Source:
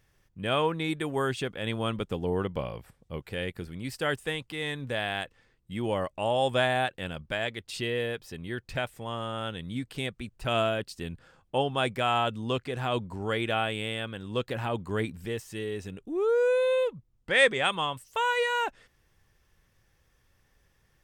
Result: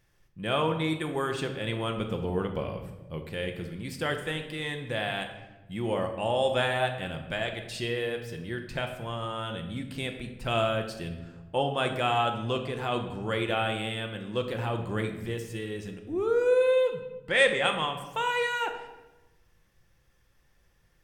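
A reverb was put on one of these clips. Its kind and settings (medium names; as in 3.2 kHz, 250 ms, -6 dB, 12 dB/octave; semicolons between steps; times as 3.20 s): simulated room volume 550 m³, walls mixed, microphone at 0.84 m; trim -1.5 dB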